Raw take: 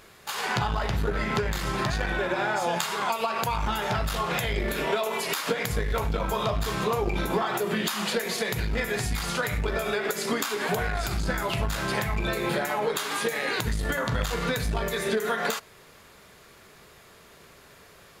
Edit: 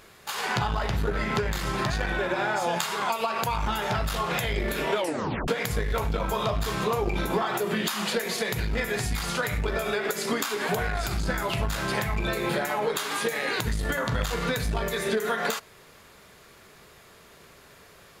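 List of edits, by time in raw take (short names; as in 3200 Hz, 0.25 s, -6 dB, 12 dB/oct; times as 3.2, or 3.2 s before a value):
4.95 tape stop 0.53 s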